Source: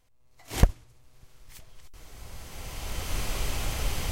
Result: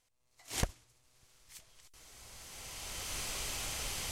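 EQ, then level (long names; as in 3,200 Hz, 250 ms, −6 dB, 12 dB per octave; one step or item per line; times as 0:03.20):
low-pass filter 9,200 Hz 12 dB per octave
spectral tilt +2 dB per octave
high-shelf EQ 6,700 Hz +5.5 dB
−7.5 dB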